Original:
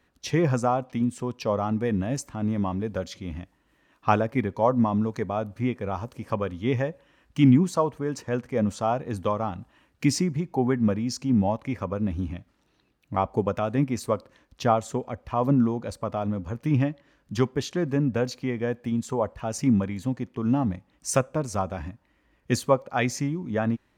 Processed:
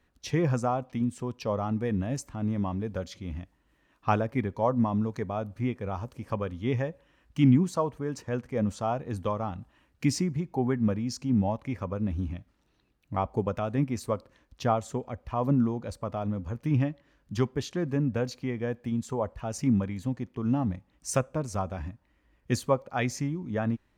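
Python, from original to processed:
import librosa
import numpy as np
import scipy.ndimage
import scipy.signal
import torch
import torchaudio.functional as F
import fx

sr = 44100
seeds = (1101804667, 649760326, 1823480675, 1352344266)

y = fx.low_shelf(x, sr, hz=79.0, db=9.5)
y = F.gain(torch.from_numpy(y), -4.5).numpy()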